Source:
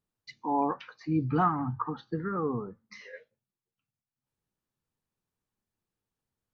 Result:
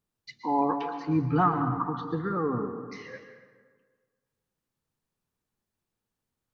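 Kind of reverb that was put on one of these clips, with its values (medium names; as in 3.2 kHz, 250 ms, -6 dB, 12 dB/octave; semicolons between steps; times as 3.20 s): plate-style reverb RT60 1.6 s, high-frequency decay 0.55×, pre-delay 105 ms, DRR 7 dB; trim +2 dB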